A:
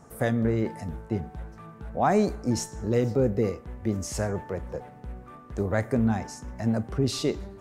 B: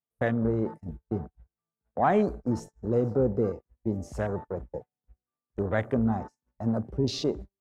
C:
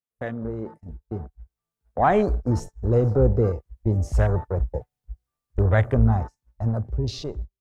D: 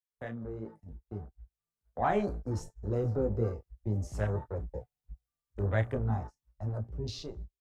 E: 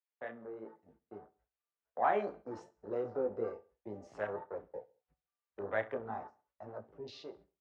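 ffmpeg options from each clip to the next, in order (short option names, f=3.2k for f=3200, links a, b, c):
-af "lowshelf=f=230:g=-3.5,agate=range=-32dB:threshold=-36dB:ratio=16:detection=peak,afwtdn=0.0126"
-af "asubboost=boost=10:cutoff=74,dynaudnorm=f=270:g=11:m=11.5dB,volume=-4dB"
-filter_complex "[0:a]acrossover=split=100|1800[a][b][c];[a]asoftclip=type=tanh:threshold=-31dB[d];[b]flanger=delay=17.5:depth=2.6:speed=2.9[e];[c]asplit=2[f][g];[g]adelay=33,volume=-12.5dB[h];[f][h]amix=inputs=2:normalize=0[i];[d][e][i]amix=inputs=3:normalize=0,volume=-7dB"
-af "highpass=440,lowpass=2.6k,aecho=1:1:66|132|198:0.0891|0.0365|0.015"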